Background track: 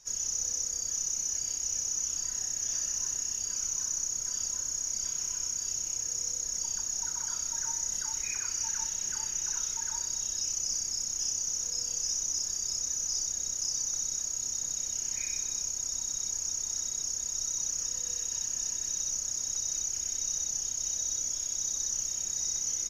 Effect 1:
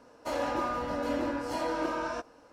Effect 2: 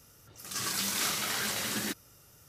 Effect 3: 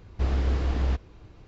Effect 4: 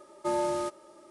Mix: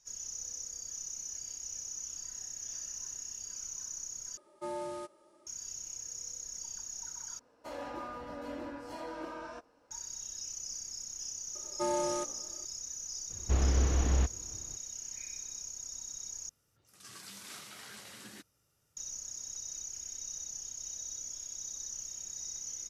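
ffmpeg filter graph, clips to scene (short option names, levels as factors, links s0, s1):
-filter_complex "[4:a]asplit=2[s0][s1];[0:a]volume=0.335[s2];[s1]asplit=4[s3][s4][s5][s6];[s4]adelay=84,afreqshift=-57,volume=0.1[s7];[s5]adelay=168,afreqshift=-114,volume=0.0422[s8];[s6]adelay=252,afreqshift=-171,volume=0.0176[s9];[s3][s7][s8][s9]amix=inputs=4:normalize=0[s10];[2:a]lowpass=f=12000:w=0.5412,lowpass=f=12000:w=1.3066[s11];[s2]asplit=4[s12][s13][s14][s15];[s12]atrim=end=4.374[s16];[s0]atrim=end=1.1,asetpts=PTS-STARTPTS,volume=0.316[s17];[s13]atrim=start=5.466:end=7.394[s18];[1:a]atrim=end=2.52,asetpts=PTS-STARTPTS,volume=0.299[s19];[s14]atrim=start=9.906:end=16.494[s20];[s11]atrim=end=2.48,asetpts=PTS-STARTPTS,volume=0.15[s21];[s15]atrim=start=18.966[s22];[s10]atrim=end=1.1,asetpts=PTS-STARTPTS,volume=0.668,afade=t=in:d=0.004:c=hsin,afade=t=out:st=1.096:d=0.004:c=hsin,adelay=11550[s23];[3:a]atrim=end=1.47,asetpts=PTS-STARTPTS,volume=0.75,afade=t=in:d=0.004:c=hsin,afade=t=out:st=1.466:d=0.004:c=hsin,adelay=13300[s24];[s16][s17]acrossfade=d=0.004:c1=hsin:c2=hsin[s25];[s25][s18]acrossfade=d=0.004:c1=hsin:c2=hsin[s26];[s26][s19]acrossfade=d=0.004:c1=hsin:c2=hsin[s27];[s27][s20]acrossfade=d=0.004:c1=hsin:c2=hsin[s28];[s28][s21]acrossfade=d=0.004:c1=hsin:c2=hsin[s29];[s29][s22]acrossfade=d=0.004:c1=hsin:c2=hsin[s30];[s30][s23][s24]amix=inputs=3:normalize=0"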